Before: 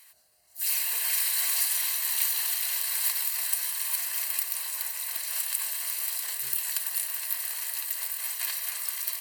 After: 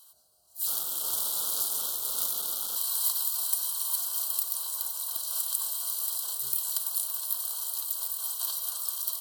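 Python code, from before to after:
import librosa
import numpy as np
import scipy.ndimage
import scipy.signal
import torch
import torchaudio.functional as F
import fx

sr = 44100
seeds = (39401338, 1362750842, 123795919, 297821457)

y = fx.cycle_switch(x, sr, every=2, mode='muted', at=(0.66, 2.75), fade=0.02)
y = scipy.signal.sosfilt(scipy.signal.ellip(3, 1.0, 70, [1400.0, 3200.0], 'bandstop', fs=sr, output='sos'), y)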